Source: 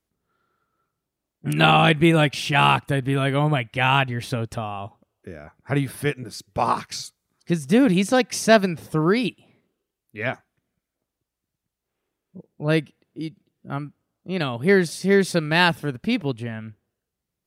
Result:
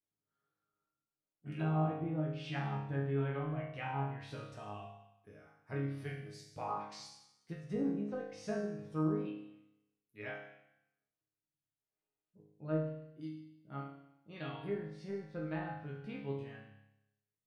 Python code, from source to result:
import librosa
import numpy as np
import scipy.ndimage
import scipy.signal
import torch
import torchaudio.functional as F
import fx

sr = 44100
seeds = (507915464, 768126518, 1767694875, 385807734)

y = fx.env_lowpass_down(x, sr, base_hz=660.0, full_db=-14.5)
y = fx.resonator_bank(y, sr, root=44, chord='sus4', decay_s=0.85)
y = y * 10.0 ** (2.0 / 20.0)